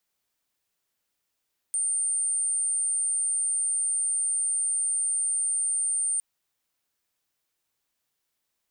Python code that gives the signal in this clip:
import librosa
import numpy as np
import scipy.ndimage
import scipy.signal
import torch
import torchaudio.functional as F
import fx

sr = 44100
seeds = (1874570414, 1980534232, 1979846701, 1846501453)

y = 10.0 ** (-23.5 / 20.0) * np.sin(2.0 * np.pi * (8920.0 * (np.arange(round(4.46 * sr)) / sr)))